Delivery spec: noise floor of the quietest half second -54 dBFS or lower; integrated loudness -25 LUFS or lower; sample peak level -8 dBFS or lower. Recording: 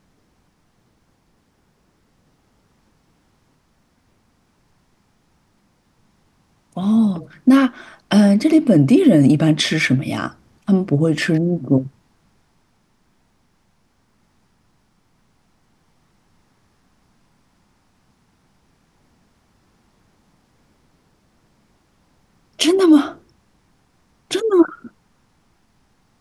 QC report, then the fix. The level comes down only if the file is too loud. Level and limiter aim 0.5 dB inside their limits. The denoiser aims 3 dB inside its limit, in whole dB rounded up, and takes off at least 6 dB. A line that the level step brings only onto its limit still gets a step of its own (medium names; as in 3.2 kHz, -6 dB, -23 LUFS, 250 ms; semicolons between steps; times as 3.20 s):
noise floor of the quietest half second -62 dBFS: pass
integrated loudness -16.0 LUFS: fail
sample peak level -3.5 dBFS: fail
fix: trim -9.5 dB